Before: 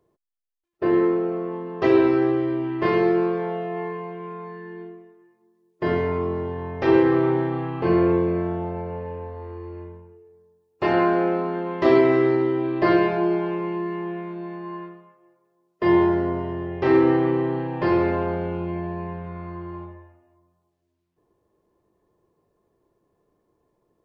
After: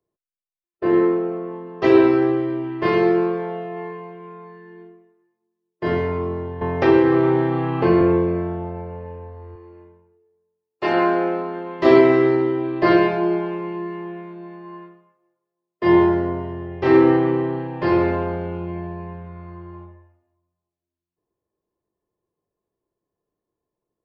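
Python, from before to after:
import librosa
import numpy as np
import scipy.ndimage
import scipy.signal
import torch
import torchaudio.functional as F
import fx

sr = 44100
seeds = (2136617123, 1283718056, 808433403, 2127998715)

y = fx.band_squash(x, sr, depth_pct=70, at=(6.61, 8.01))
y = fx.highpass(y, sr, hz=220.0, slope=6, at=(9.55, 11.8))
y = fx.band_widen(y, sr, depth_pct=40)
y = y * 10.0 ** (2.0 / 20.0)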